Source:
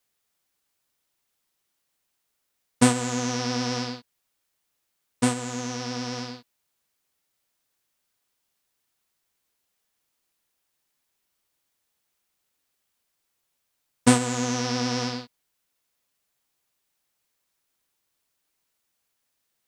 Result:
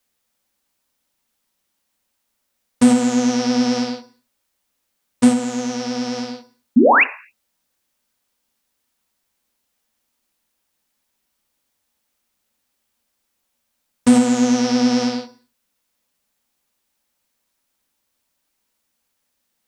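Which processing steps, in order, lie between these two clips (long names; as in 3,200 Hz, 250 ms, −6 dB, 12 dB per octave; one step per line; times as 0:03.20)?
sound drawn into the spectrogram rise, 0:06.76–0:07.04, 210–2,900 Hz −15 dBFS
dynamic equaliser 250 Hz, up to +6 dB, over −33 dBFS, Q 7.6
on a send at −8 dB: convolution reverb RT60 0.45 s, pre-delay 3 ms
on the sum: boost into a limiter +7 dB
level −3.5 dB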